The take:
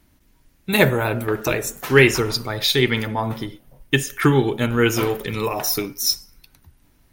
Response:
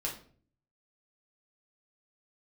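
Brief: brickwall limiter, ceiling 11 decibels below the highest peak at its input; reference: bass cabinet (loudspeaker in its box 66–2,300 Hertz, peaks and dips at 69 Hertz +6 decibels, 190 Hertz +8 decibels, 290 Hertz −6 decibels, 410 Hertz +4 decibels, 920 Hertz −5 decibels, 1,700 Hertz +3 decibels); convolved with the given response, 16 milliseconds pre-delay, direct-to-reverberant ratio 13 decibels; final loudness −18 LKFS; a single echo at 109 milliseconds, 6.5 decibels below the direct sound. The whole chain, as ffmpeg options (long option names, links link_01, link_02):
-filter_complex "[0:a]alimiter=limit=-12.5dB:level=0:latency=1,aecho=1:1:109:0.473,asplit=2[link_01][link_02];[1:a]atrim=start_sample=2205,adelay=16[link_03];[link_02][link_03]afir=irnorm=-1:irlink=0,volume=-16dB[link_04];[link_01][link_04]amix=inputs=2:normalize=0,highpass=frequency=66:width=0.5412,highpass=frequency=66:width=1.3066,equalizer=frequency=69:width_type=q:width=4:gain=6,equalizer=frequency=190:width_type=q:width=4:gain=8,equalizer=frequency=290:width_type=q:width=4:gain=-6,equalizer=frequency=410:width_type=q:width=4:gain=4,equalizer=frequency=920:width_type=q:width=4:gain=-5,equalizer=frequency=1700:width_type=q:width=4:gain=3,lowpass=frequency=2300:width=0.5412,lowpass=frequency=2300:width=1.3066,volume=5dB"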